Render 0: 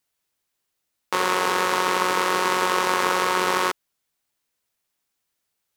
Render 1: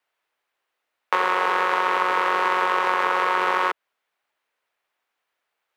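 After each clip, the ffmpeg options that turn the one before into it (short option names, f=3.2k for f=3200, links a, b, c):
-filter_complex "[0:a]acrossover=split=420 2900:gain=0.1 1 0.112[a][b][c];[a][b][c]amix=inputs=3:normalize=0,acrossover=split=200[d][e];[e]acompressor=threshold=-25dB:ratio=6[f];[d][f]amix=inputs=2:normalize=0,volume=8dB"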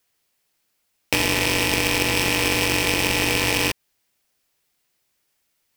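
-af "aexciter=amount=4.2:drive=5.2:freq=3.2k,aeval=exprs='val(0)*sgn(sin(2*PI*1400*n/s))':c=same"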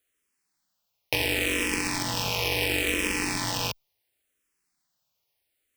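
-filter_complex "[0:a]asplit=2[a][b];[b]afreqshift=-0.71[c];[a][c]amix=inputs=2:normalize=1,volume=-3.5dB"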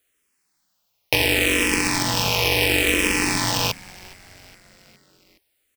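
-filter_complex "[0:a]asplit=5[a][b][c][d][e];[b]adelay=415,afreqshift=-110,volume=-22.5dB[f];[c]adelay=830,afreqshift=-220,volume=-26.9dB[g];[d]adelay=1245,afreqshift=-330,volume=-31.4dB[h];[e]adelay=1660,afreqshift=-440,volume=-35.8dB[i];[a][f][g][h][i]amix=inputs=5:normalize=0,volume=7dB"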